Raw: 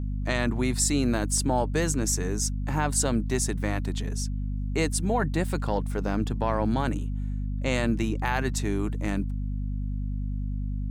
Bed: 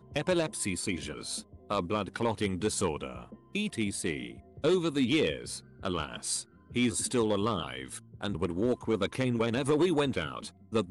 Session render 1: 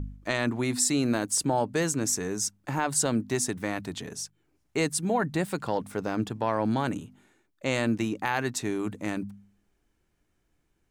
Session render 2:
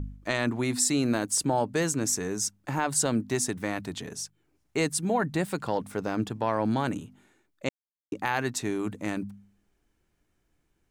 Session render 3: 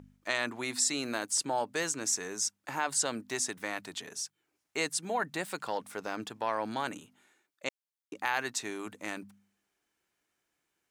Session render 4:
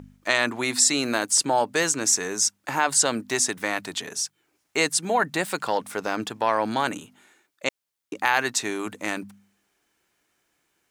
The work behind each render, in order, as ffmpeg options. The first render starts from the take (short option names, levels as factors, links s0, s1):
-af "bandreject=f=50:t=h:w=4,bandreject=f=100:t=h:w=4,bandreject=f=150:t=h:w=4,bandreject=f=200:t=h:w=4,bandreject=f=250:t=h:w=4"
-filter_complex "[0:a]asplit=3[s0][s1][s2];[s0]atrim=end=7.69,asetpts=PTS-STARTPTS,afade=t=out:st=7.686:d=0.004:c=hsin[s3];[s1]atrim=start=7.69:end=8.12,asetpts=PTS-STARTPTS,volume=0[s4];[s2]atrim=start=8.12,asetpts=PTS-STARTPTS,afade=t=in:d=0.004:c=hsin[s5];[s3][s4][s5]concat=n=3:v=0:a=1"
-filter_complex "[0:a]highpass=f=980:p=1,acrossover=split=8600[s0][s1];[s1]acompressor=threshold=0.00562:ratio=4:attack=1:release=60[s2];[s0][s2]amix=inputs=2:normalize=0"
-af "volume=2.99"